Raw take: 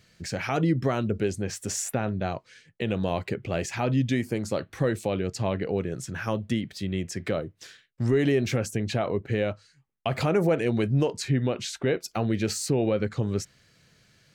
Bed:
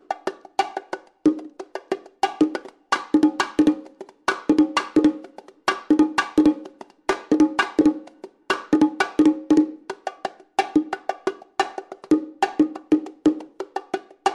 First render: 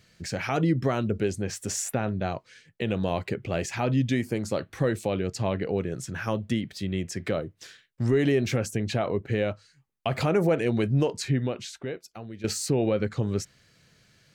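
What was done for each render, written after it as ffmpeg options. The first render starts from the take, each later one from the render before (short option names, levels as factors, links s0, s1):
-filter_complex "[0:a]asplit=2[s0][s1];[s0]atrim=end=12.44,asetpts=PTS-STARTPTS,afade=t=out:st=11.28:d=1.16:c=qua:silence=0.177828[s2];[s1]atrim=start=12.44,asetpts=PTS-STARTPTS,afade=t=in:d=0.004:c=hsin:silence=0.177828[s3];[s2][s3]concat=n=2:v=0:a=1"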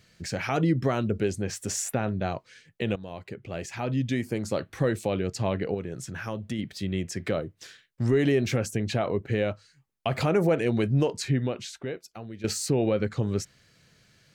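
-filter_complex "[0:a]asettb=1/sr,asplit=3[s0][s1][s2];[s0]atrim=end=5.744[s3];[s1]atrim=start=5.74:end=6.59,asetpts=PTS-STARTPTS,afade=t=in:d=0.004:c=qsin,afade=t=out:st=0.846:d=0.004:c=qsin,acompressor=threshold=0.0158:ratio=1.5:attack=3.2:release=140:knee=1:detection=peak[s4];[s2]atrim=start=6.586[s5];[s3][s4]acrossfade=d=0.004:c1=hsin:c2=qsin[s6];[s6][s5]acrossfade=d=0.004:c1=qsin:c2=hsin,asplit=2[s7][s8];[s7]atrim=end=2.96,asetpts=PTS-STARTPTS,afade=t=out:st=2.956:d=0.004:c=hsin:silence=0.177828[s9];[s8]atrim=start=2.96,asetpts=PTS-STARTPTS,afade=t=in:d=1.61:silence=0.177828[s10];[s9][s10]concat=n=2:v=0:a=1"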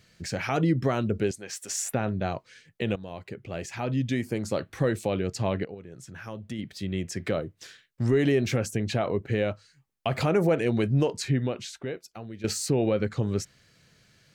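-filter_complex "[0:a]asettb=1/sr,asplit=3[s0][s1][s2];[s0]atrim=end=1.314[s3];[s1]atrim=start=1.31:end=1.8,asetpts=PTS-STARTPTS,afade=t=in:d=0.004:c=qsin,afade=t=out:st=0.486:d=0.004:c=qsin,highpass=f=1200:p=1[s4];[s2]atrim=start=1.796[s5];[s3][s4]acrossfade=d=0.004:c1=hsin:c2=qsin[s6];[s6][s5]acrossfade=d=0.004:c1=qsin:c2=hsin,asplit=2[s7][s8];[s7]atrim=end=5.65,asetpts=PTS-STARTPTS,afade=t=out:st=5.646:d=0.004:c=hsin:silence=0.223872[s9];[s8]atrim=start=5.65,asetpts=PTS-STARTPTS,afade=t=in:d=1.52:silence=0.223872[s10];[s9][s10]concat=n=2:v=0:a=1"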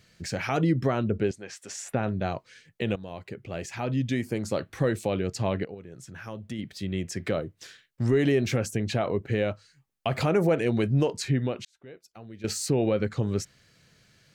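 -filter_complex "[0:a]asettb=1/sr,asplit=3[s0][s1][s2];[s0]atrim=end=0.874[s3];[s1]atrim=start=0.87:end=2.03,asetpts=PTS-STARTPTS,afade=t=in:d=0.004:c=qsin,afade=t=out:st=1.156:d=0.004:c=qsin,aemphasis=mode=reproduction:type=50fm[s4];[s2]atrim=start=2.026[s5];[s3][s4]acrossfade=d=0.004:c1=hsin:c2=qsin[s6];[s6][s5]acrossfade=d=0.004:c1=qsin:c2=hsin,asplit=2[s7][s8];[s7]atrim=end=11.65,asetpts=PTS-STARTPTS,afade=t=out:st=11.646:d=0.004:c=hsin[s9];[s8]atrim=start=11.65,asetpts=PTS-STARTPTS,afade=t=in:d=1[s10];[s9][s10]concat=n=2:v=0:a=1"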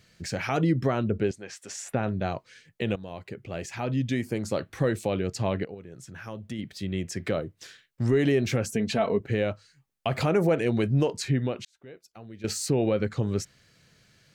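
-filter_complex "[0:a]asettb=1/sr,asplit=3[s0][s1][s2];[s0]atrim=end=8.684[s3];[s1]atrim=start=8.68:end=9.2,asetpts=PTS-STARTPTS,afade=t=in:d=0.004:c=qsin,afade=t=out:st=0.516:d=0.004:c=qsin,aecho=1:1:4.5:0.65,atrim=end_sample=22932[s4];[s2]atrim=start=9.196[s5];[s3][s4]acrossfade=d=0.004:c1=hsin:c2=qsin[s6];[s6][s5]acrossfade=d=0.004:c1=qsin:c2=hsin"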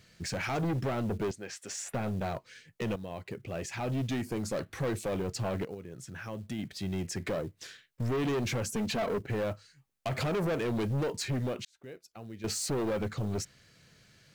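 -af "asoftclip=type=tanh:threshold=0.0422,acrusher=bits=7:mode=log:mix=0:aa=0.000001"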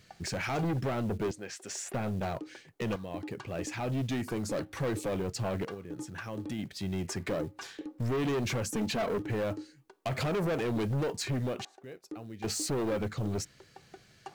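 -filter_complex "[1:a]volume=0.0531[s0];[0:a][s0]amix=inputs=2:normalize=0"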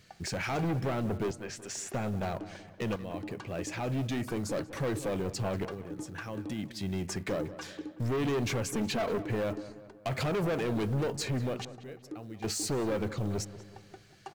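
-filter_complex "[0:a]asplit=2[s0][s1];[s1]adelay=187,lowpass=f=2400:p=1,volume=0.2,asplit=2[s2][s3];[s3]adelay=187,lowpass=f=2400:p=1,volume=0.52,asplit=2[s4][s5];[s5]adelay=187,lowpass=f=2400:p=1,volume=0.52,asplit=2[s6][s7];[s7]adelay=187,lowpass=f=2400:p=1,volume=0.52,asplit=2[s8][s9];[s9]adelay=187,lowpass=f=2400:p=1,volume=0.52[s10];[s0][s2][s4][s6][s8][s10]amix=inputs=6:normalize=0"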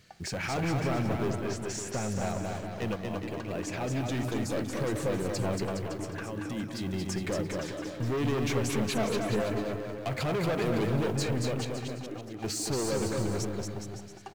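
-af "aecho=1:1:230|414|561.2|679|773.2:0.631|0.398|0.251|0.158|0.1"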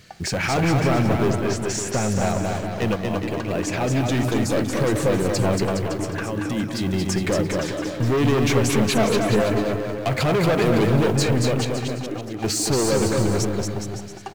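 -af "volume=3.16"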